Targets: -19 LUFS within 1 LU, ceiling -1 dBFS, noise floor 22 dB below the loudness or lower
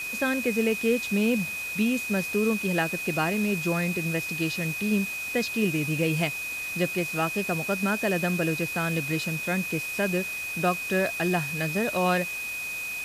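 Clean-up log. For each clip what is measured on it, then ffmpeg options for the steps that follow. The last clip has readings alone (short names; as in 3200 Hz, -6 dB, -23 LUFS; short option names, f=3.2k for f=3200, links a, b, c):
steady tone 2500 Hz; tone level -31 dBFS; noise floor -33 dBFS; noise floor target -49 dBFS; loudness -26.5 LUFS; peak -12.5 dBFS; loudness target -19.0 LUFS
-> -af "bandreject=f=2.5k:w=30"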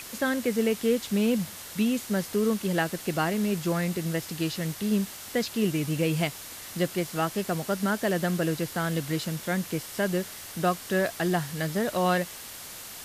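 steady tone none; noise floor -42 dBFS; noise floor target -50 dBFS
-> -af "afftdn=nr=8:nf=-42"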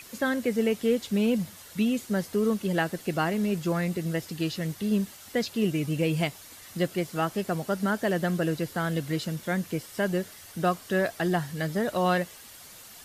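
noise floor -48 dBFS; noise floor target -51 dBFS
-> -af "afftdn=nr=6:nf=-48"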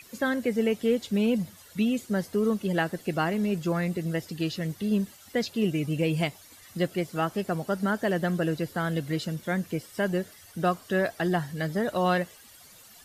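noise floor -52 dBFS; loudness -28.5 LUFS; peak -13.5 dBFS; loudness target -19.0 LUFS
-> -af "volume=9.5dB"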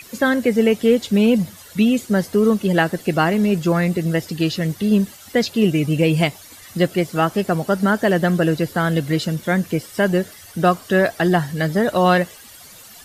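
loudness -19.0 LUFS; peak -4.0 dBFS; noise floor -43 dBFS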